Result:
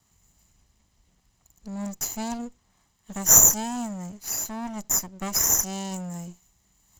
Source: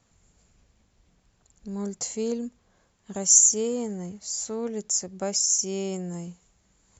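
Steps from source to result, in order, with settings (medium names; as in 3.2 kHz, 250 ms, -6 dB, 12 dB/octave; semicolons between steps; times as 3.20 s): comb filter that takes the minimum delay 1 ms; treble shelf 5.9 kHz +8.5 dB; trim -1 dB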